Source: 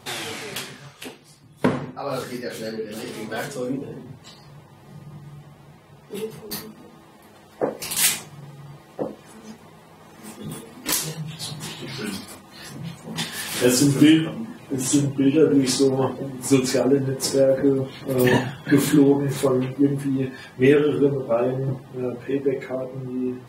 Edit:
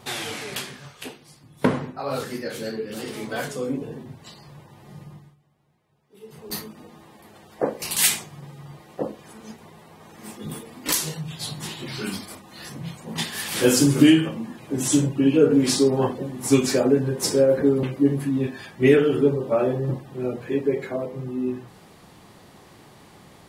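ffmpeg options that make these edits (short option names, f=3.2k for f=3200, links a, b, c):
-filter_complex "[0:a]asplit=4[a][b][c][d];[a]atrim=end=5.36,asetpts=PTS-STARTPTS,afade=t=out:st=5.04:d=0.32:silence=0.1[e];[b]atrim=start=5.36:end=6.2,asetpts=PTS-STARTPTS,volume=-20dB[f];[c]atrim=start=6.2:end=17.832,asetpts=PTS-STARTPTS,afade=t=in:d=0.32:silence=0.1[g];[d]atrim=start=19.618[h];[e][f][g]concat=n=3:v=0:a=1[i];[i][h]acrossfade=d=0.004:c1=hsin:c2=hsin"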